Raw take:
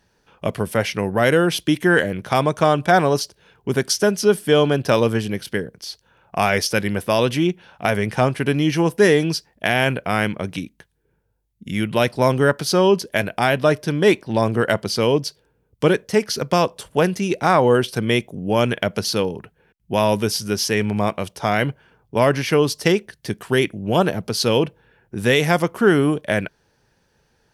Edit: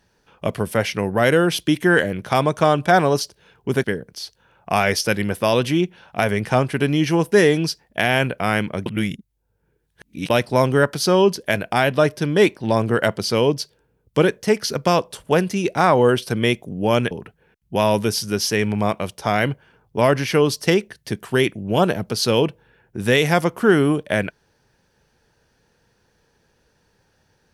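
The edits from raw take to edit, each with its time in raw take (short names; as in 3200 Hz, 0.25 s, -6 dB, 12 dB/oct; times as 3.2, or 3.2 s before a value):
3.84–5.5 cut
10.52–11.96 reverse
18.77–19.29 cut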